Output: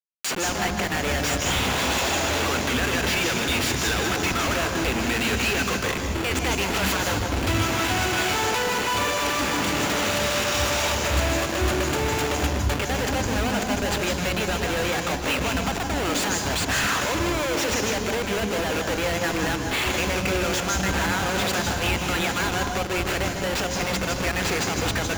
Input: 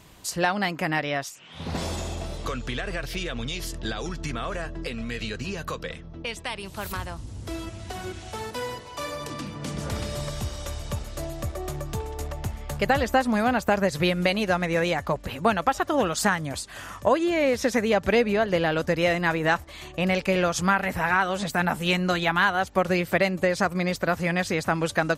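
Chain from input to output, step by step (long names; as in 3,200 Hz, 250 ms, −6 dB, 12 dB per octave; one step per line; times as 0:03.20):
camcorder AGC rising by 30 dB per second
high-pass filter 890 Hz 6 dB per octave
noise gate with hold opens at −30 dBFS
downward compressor 16 to 1, threshold −29 dBFS, peak gain reduction 13 dB
comparator with hysteresis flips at −37.5 dBFS
convolution reverb RT60 1.0 s, pre-delay 147 ms, DRR 4.5 dB
level +7 dB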